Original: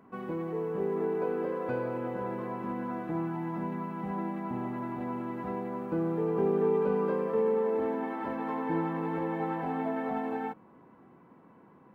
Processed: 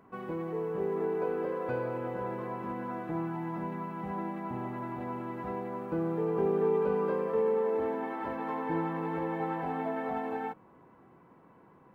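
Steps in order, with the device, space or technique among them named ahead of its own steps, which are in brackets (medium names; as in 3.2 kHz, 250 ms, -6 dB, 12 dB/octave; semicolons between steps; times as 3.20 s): low shelf boost with a cut just above (bass shelf 62 Hz +6.5 dB; peaking EQ 230 Hz -5.5 dB 0.75 oct)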